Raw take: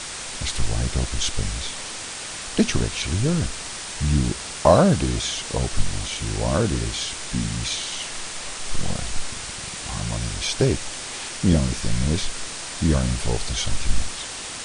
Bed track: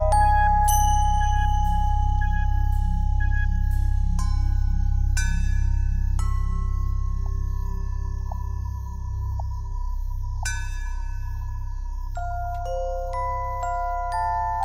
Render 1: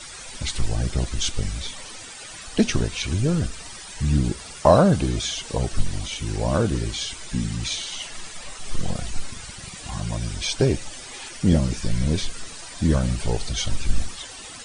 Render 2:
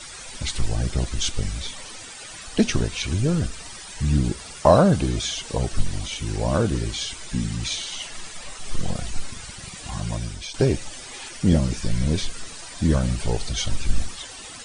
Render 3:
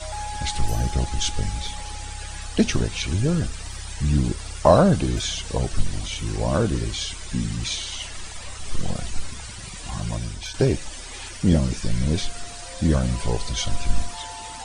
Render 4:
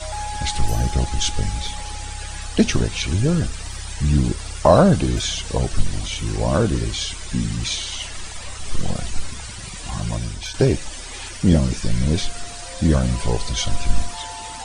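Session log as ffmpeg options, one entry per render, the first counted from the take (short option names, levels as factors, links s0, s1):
-af "afftdn=nr=13:nf=-34"
-filter_complex "[0:a]asplit=2[s0][s1];[s0]atrim=end=10.54,asetpts=PTS-STARTPTS,afade=t=out:st=10.14:d=0.4:silence=0.266073[s2];[s1]atrim=start=10.54,asetpts=PTS-STARTPTS,afade=t=in:d=0.004:c=hsin:silence=0.266073[s3];[s2][s3]concat=n=2:v=0:a=1"
-filter_complex "[1:a]volume=0.2[s0];[0:a][s0]amix=inputs=2:normalize=0"
-af "volume=1.41,alimiter=limit=0.794:level=0:latency=1"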